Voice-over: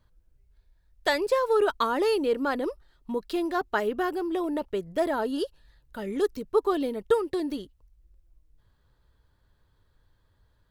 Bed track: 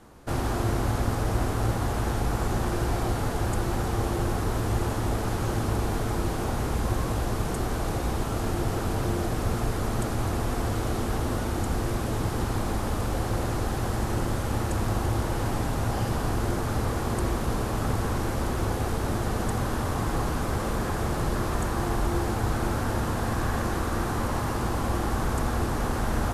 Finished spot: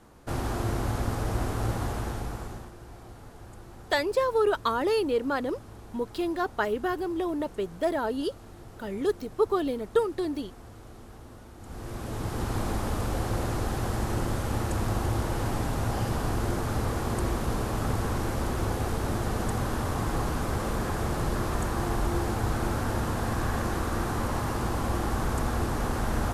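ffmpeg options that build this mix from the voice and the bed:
ffmpeg -i stem1.wav -i stem2.wav -filter_complex "[0:a]adelay=2850,volume=-1dB[link_01];[1:a]volume=15dB,afade=type=out:start_time=1.82:duration=0.9:silence=0.149624,afade=type=in:start_time=11.59:duration=1.01:silence=0.125893[link_02];[link_01][link_02]amix=inputs=2:normalize=0" out.wav

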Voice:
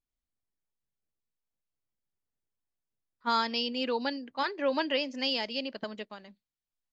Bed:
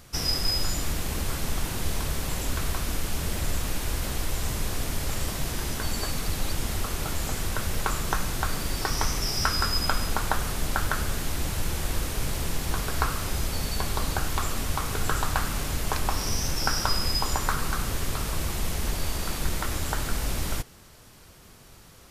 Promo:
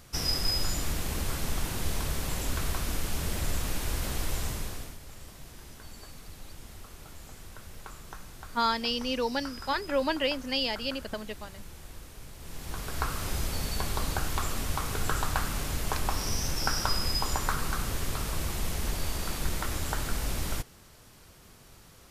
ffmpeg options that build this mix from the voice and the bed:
ffmpeg -i stem1.wav -i stem2.wav -filter_complex "[0:a]adelay=5300,volume=1dB[link_01];[1:a]volume=12dB,afade=type=out:start_time=4.36:duration=0.62:silence=0.177828,afade=type=in:start_time=12.38:duration=0.91:silence=0.188365[link_02];[link_01][link_02]amix=inputs=2:normalize=0" out.wav

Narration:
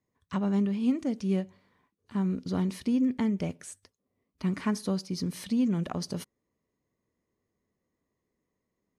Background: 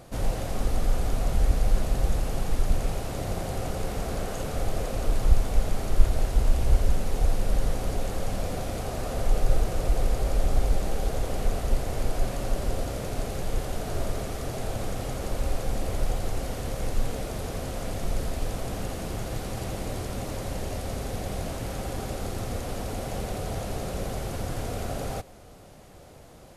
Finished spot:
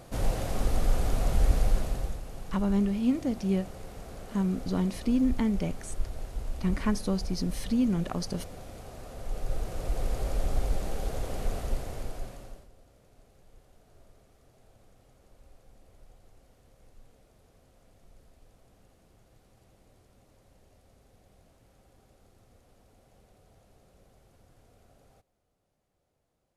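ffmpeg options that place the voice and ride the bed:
ffmpeg -i stem1.wav -i stem2.wav -filter_complex "[0:a]adelay=2200,volume=0.5dB[link_01];[1:a]volume=7dB,afade=type=out:start_time=1.59:duration=0.61:silence=0.251189,afade=type=in:start_time=9.18:duration=1.02:silence=0.398107,afade=type=out:start_time=11.59:duration=1.09:silence=0.0630957[link_02];[link_01][link_02]amix=inputs=2:normalize=0" out.wav

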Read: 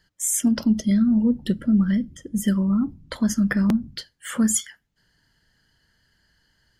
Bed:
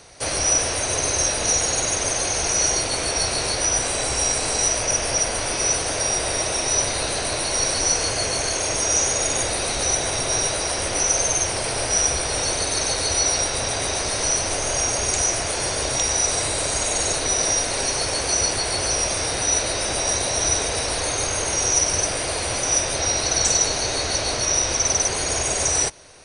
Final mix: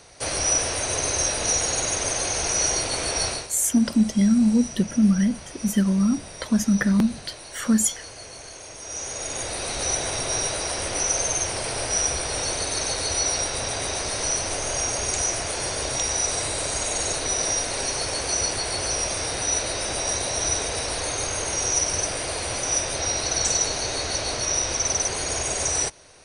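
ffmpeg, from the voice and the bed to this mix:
ffmpeg -i stem1.wav -i stem2.wav -filter_complex "[0:a]adelay=3300,volume=0.5dB[link_01];[1:a]volume=11dB,afade=type=out:start_time=3.27:duration=0.21:silence=0.188365,afade=type=in:start_time=8.8:duration=1.1:silence=0.211349[link_02];[link_01][link_02]amix=inputs=2:normalize=0" out.wav

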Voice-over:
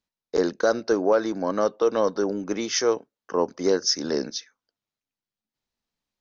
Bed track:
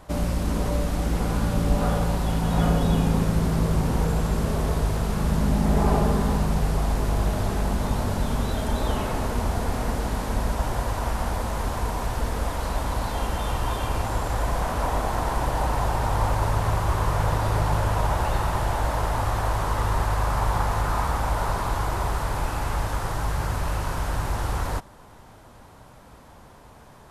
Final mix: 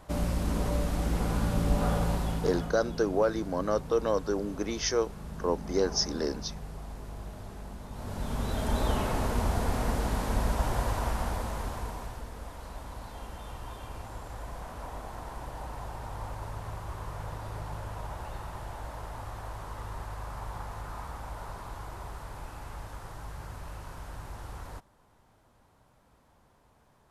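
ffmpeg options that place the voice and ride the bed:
ffmpeg -i stem1.wav -i stem2.wav -filter_complex "[0:a]adelay=2100,volume=-5.5dB[link_01];[1:a]volume=10.5dB,afade=type=out:start_time=2.13:duration=0.59:silence=0.211349,afade=type=in:start_time=7.91:duration=0.86:silence=0.177828,afade=type=out:start_time=10.87:duration=1.39:silence=0.237137[link_02];[link_01][link_02]amix=inputs=2:normalize=0" out.wav

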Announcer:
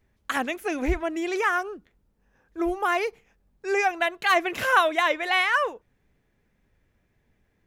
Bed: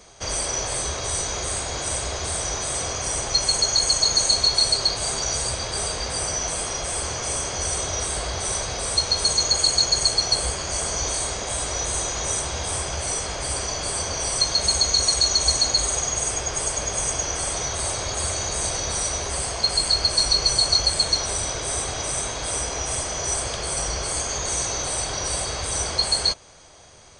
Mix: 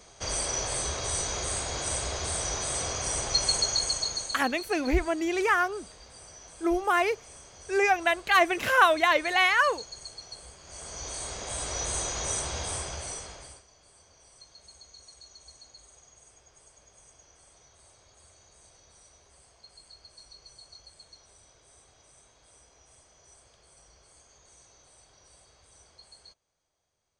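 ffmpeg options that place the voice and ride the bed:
ffmpeg -i stem1.wav -i stem2.wav -filter_complex "[0:a]adelay=4050,volume=0dB[link_01];[1:a]volume=13dB,afade=type=out:start_time=3.5:duration=0.94:silence=0.11885,afade=type=in:start_time=10.61:duration=1.25:silence=0.133352,afade=type=out:start_time=12.58:duration=1.05:silence=0.0473151[link_02];[link_01][link_02]amix=inputs=2:normalize=0" out.wav

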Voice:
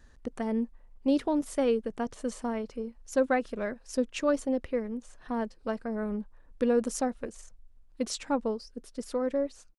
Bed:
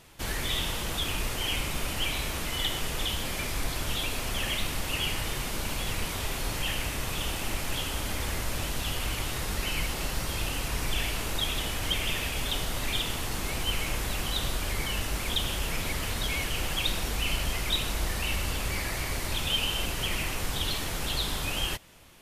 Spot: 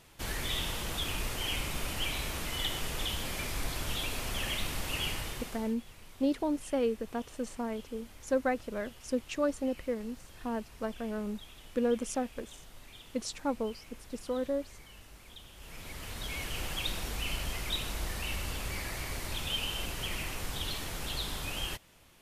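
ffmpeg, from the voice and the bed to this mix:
ffmpeg -i stem1.wav -i stem2.wav -filter_complex "[0:a]adelay=5150,volume=-3.5dB[link_01];[1:a]volume=12dB,afade=type=out:start_time=5.07:duration=0.68:silence=0.125893,afade=type=in:start_time=15.54:duration=1.03:silence=0.158489[link_02];[link_01][link_02]amix=inputs=2:normalize=0" out.wav

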